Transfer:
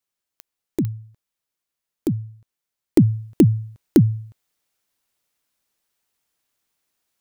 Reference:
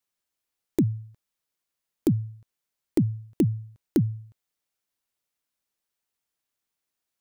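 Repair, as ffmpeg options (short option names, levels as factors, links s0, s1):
-af "adeclick=t=4,asetnsamples=n=441:p=0,asendcmd='2.97 volume volume -8.5dB',volume=1"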